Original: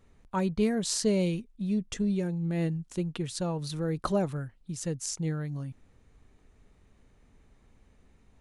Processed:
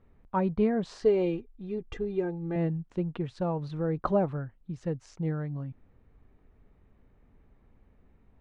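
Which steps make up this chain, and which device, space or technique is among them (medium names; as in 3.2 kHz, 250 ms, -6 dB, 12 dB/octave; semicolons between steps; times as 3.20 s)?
1.02–2.56 s: comb 2.5 ms, depth 71%; dynamic bell 830 Hz, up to +5 dB, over -45 dBFS, Q 0.83; phone in a pocket (low-pass 3 kHz 12 dB/octave; treble shelf 2.3 kHz -9.5 dB)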